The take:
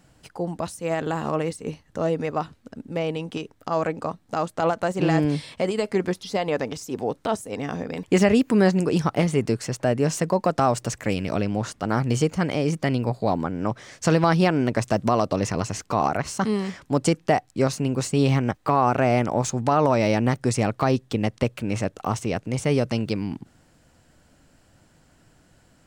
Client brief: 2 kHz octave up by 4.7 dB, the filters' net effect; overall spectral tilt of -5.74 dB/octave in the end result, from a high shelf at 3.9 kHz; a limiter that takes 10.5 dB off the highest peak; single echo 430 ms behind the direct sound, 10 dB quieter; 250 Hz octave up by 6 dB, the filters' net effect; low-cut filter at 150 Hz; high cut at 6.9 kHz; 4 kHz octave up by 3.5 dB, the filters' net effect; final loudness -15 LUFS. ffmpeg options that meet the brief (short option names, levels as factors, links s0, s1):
-af "highpass=150,lowpass=6900,equalizer=f=250:t=o:g=8.5,equalizer=f=2000:t=o:g=5.5,highshelf=f=3900:g=-7.5,equalizer=f=4000:t=o:g=8,alimiter=limit=0.266:level=0:latency=1,aecho=1:1:430:0.316,volume=2.66"